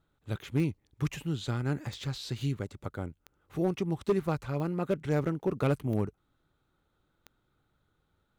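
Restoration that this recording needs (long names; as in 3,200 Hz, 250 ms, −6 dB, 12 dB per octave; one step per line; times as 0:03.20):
clipped peaks rebuilt −20 dBFS
click removal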